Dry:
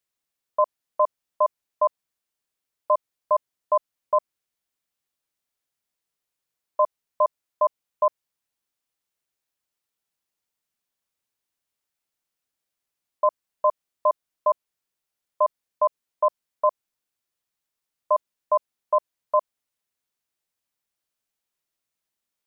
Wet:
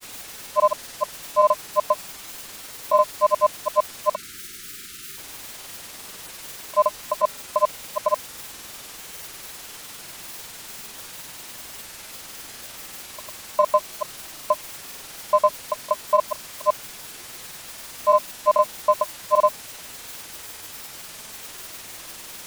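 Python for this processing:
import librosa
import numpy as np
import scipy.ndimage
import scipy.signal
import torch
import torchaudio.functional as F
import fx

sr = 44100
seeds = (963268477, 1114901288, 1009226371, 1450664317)

y = x + 0.5 * 10.0 ** (-32.5 / 20.0) * np.sign(x)
y = fx.granulator(y, sr, seeds[0], grain_ms=100.0, per_s=20.0, spray_ms=100.0, spread_st=0)
y = fx.spec_erase(y, sr, start_s=4.15, length_s=1.02, low_hz=440.0, high_hz=1200.0)
y = y * librosa.db_to_amplitude(3.5)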